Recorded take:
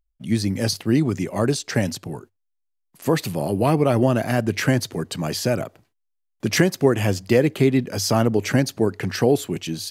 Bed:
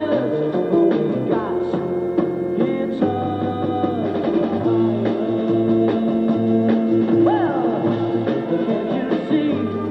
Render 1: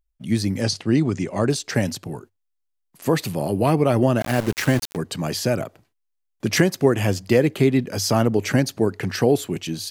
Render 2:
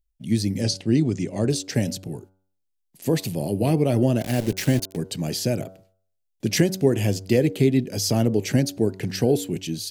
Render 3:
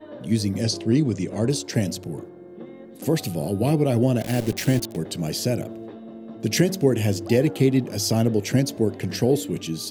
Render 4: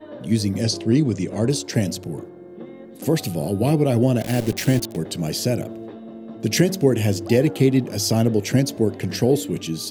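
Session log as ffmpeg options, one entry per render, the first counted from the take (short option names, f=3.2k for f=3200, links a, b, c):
-filter_complex "[0:a]asettb=1/sr,asplit=3[a][b][c];[a]atrim=end=0.614[d];[b]atrim=start=0.61:end=1.5,asetpts=PTS-STARTPTS,afade=t=in:d=0.004:c=qsin,afade=t=out:st=0.886:d=0.004:c=qsin,lowpass=f=8.5k:w=0.5412,lowpass=f=8.5k:w=1.3066[e];[c]atrim=start=1.496[f];[d][e]acrossfade=d=0.004:c1=hsin:c2=qsin[g];[g][f]acrossfade=d=0.004:c1=qsin:c2=hsin,asplit=3[h][i][j];[h]afade=t=out:st=4.2:d=0.02[k];[i]aeval=exprs='val(0)*gte(abs(val(0)),0.0531)':c=same,afade=t=in:st=4.2:d=0.02,afade=t=out:st=4.95:d=0.02[l];[j]afade=t=in:st=4.95:d=0.02[m];[k][l][m]amix=inputs=3:normalize=0"
-af "equalizer=f=1.2k:w=1.2:g=-15,bandreject=f=94.6:t=h:w=4,bandreject=f=189.2:t=h:w=4,bandreject=f=283.8:t=h:w=4,bandreject=f=378.4:t=h:w=4,bandreject=f=473:t=h:w=4,bandreject=f=567.6:t=h:w=4,bandreject=f=662.2:t=h:w=4,bandreject=f=756.8:t=h:w=4,bandreject=f=851.4:t=h:w=4,bandreject=f=946:t=h:w=4,bandreject=f=1.0406k:t=h:w=4,bandreject=f=1.1352k:t=h:w=4,bandreject=f=1.2298k:t=h:w=4,bandreject=f=1.3244k:t=h:w=4,bandreject=f=1.419k:t=h:w=4,bandreject=f=1.5136k:t=h:w=4"
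-filter_complex "[1:a]volume=-20.5dB[a];[0:a][a]amix=inputs=2:normalize=0"
-af "volume=2dB"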